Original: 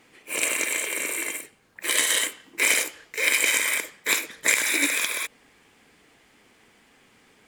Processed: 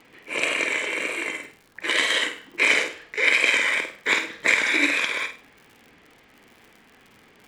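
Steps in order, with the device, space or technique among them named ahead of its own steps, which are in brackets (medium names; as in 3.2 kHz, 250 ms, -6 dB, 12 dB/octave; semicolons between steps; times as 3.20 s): lo-fi chain (low-pass 3.6 kHz 12 dB/octave; wow and flutter; crackle 74 per s -43 dBFS); flutter echo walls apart 8.5 m, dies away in 0.35 s; trim +3.5 dB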